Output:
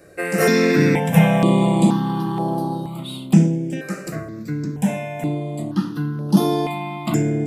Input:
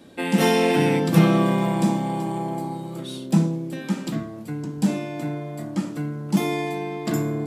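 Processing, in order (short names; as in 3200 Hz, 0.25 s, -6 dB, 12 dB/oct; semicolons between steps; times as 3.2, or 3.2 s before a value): dynamic EQ 1200 Hz, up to +3 dB, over -39 dBFS, Q 1.9; step phaser 2.1 Hz 910–7500 Hz; gain +6 dB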